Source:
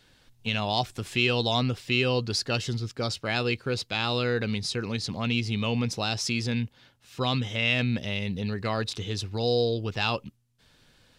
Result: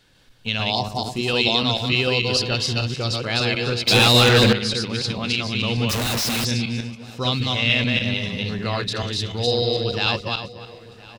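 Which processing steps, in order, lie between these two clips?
backward echo that repeats 148 ms, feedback 45%, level -1.5 dB; 0.75–1.28 s: high-order bell 2.2 kHz -11 dB; feedback delay 1017 ms, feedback 45%, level -20 dB; dynamic bell 3.9 kHz, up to +6 dB, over -41 dBFS, Q 1.5; 3.87–4.53 s: waveshaping leveller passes 3; 5.89–6.45 s: Schmitt trigger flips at -39.5 dBFS; trim +1.5 dB

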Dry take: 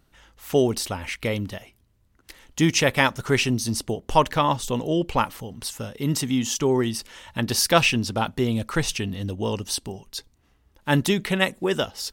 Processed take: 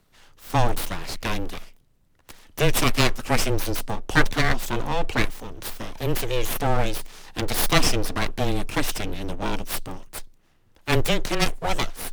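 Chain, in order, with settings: full-wave rectifier; frequency shift -15 Hz; trim +2.5 dB

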